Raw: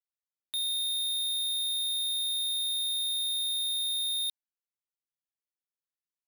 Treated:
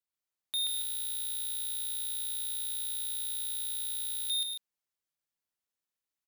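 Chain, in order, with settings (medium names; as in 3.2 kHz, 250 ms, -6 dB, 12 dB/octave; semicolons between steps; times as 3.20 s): on a send: loudspeakers at several distances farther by 45 m -1 dB, 81 m -8 dB, 95 m -8 dB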